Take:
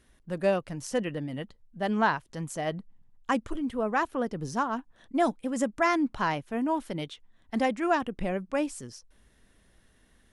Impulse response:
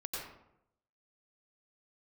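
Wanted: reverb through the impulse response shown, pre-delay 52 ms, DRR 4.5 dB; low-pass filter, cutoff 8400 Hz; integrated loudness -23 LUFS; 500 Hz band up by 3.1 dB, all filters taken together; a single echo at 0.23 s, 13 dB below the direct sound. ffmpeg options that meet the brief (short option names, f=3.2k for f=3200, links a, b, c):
-filter_complex "[0:a]lowpass=8.4k,equalizer=f=500:t=o:g=4,aecho=1:1:230:0.224,asplit=2[a][b];[1:a]atrim=start_sample=2205,adelay=52[c];[b][c]afir=irnorm=-1:irlink=0,volume=-6dB[d];[a][d]amix=inputs=2:normalize=0,volume=4dB"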